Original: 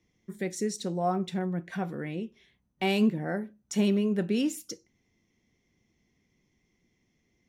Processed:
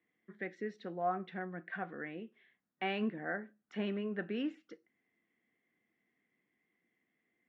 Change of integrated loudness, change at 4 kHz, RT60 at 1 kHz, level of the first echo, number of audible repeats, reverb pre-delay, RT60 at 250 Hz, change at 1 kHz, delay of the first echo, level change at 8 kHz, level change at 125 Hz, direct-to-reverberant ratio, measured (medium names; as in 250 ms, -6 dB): -9.5 dB, -11.0 dB, no reverb, no echo, no echo, no reverb, no reverb, -5.0 dB, no echo, under -35 dB, -14.0 dB, no reverb